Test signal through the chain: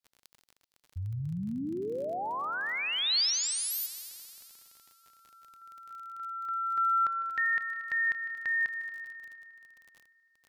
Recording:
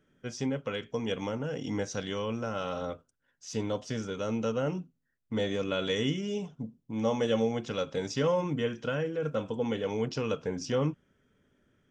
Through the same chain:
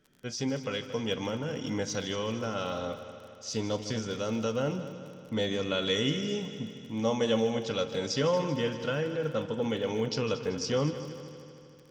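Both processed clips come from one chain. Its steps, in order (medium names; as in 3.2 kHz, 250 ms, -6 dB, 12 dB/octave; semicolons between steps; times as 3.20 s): peaking EQ 4.5 kHz +8.5 dB 0.82 oct; multi-head delay 77 ms, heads second and third, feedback 62%, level -14 dB; crackle 29 per s -42 dBFS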